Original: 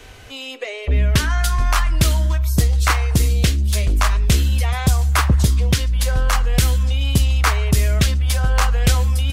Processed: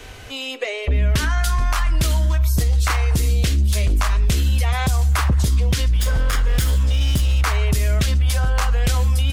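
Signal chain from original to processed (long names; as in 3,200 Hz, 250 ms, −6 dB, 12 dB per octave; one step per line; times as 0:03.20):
0:05.87–0:07.44: lower of the sound and its delayed copy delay 0.58 ms
brickwall limiter −14.5 dBFS, peak gain reduction 9 dB
level +3 dB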